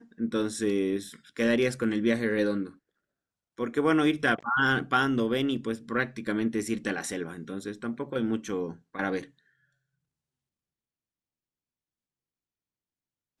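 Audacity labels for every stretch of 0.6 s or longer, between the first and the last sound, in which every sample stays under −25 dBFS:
2.630000	3.610000	silence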